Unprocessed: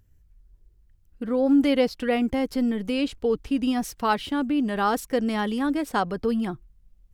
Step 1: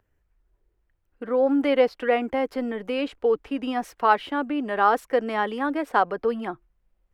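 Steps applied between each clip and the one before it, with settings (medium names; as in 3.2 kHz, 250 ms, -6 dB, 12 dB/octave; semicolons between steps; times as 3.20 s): three-band isolator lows -18 dB, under 360 Hz, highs -16 dB, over 2.5 kHz; trim +5 dB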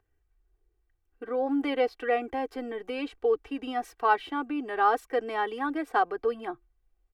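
comb 2.6 ms, depth 72%; trim -6.5 dB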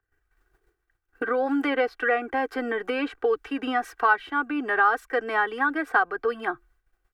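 expander -59 dBFS; peaking EQ 1.5 kHz +13 dB 0.79 oct; three bands compressed up and down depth 70%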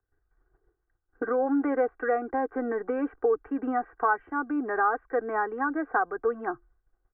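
Bessel low-pass 1 kHz, order 8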